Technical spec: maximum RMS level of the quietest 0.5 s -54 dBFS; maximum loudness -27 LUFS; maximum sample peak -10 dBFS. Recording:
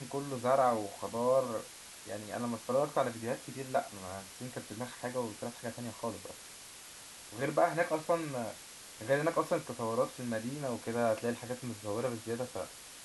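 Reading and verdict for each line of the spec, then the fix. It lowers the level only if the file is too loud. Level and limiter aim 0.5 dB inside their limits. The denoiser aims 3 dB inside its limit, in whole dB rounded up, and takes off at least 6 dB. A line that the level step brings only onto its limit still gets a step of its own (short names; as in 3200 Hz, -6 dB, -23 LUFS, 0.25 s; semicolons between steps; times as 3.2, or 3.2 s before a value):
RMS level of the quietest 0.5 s -51 dBFS: fail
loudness -35.0 LUFS: OK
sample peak -16.5 dBFS: OK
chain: denoiser 6 dB, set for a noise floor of -51 dBFS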